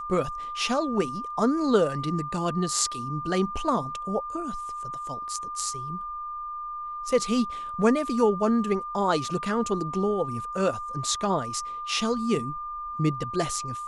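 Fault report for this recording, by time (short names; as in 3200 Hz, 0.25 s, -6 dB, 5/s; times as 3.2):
tone 1200 Hz -32 dBFS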